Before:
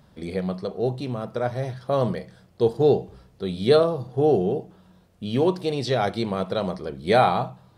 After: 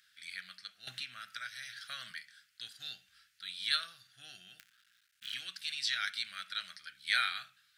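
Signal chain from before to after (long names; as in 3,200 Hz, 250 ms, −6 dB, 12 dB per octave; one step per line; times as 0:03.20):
0:04.59–0:05.34: sub-harmonics by changed cycles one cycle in 3, muted
elliptic high-pass filter 1,500 Hz, stop band 40 dB
0:00.87–0:02.12: multiband upward and downward compressor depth 100%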